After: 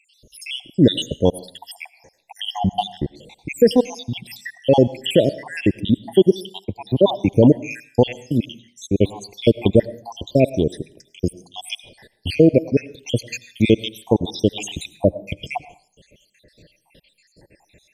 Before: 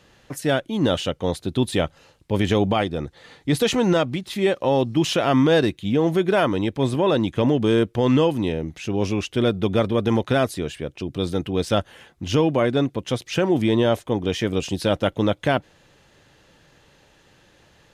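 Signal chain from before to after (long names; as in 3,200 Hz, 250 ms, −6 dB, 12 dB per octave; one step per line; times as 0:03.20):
time-frequency cells dropped at random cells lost 80%
Butterworth band-reject 1,300 Hz, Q 1.1
on a send at −17 dB: convolution reverb RT60 0.45 s, pre-delay 60 ms
0:06.65–0:07.29: on the sum: multiband upward and downward expander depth 40%
level +8.5 dB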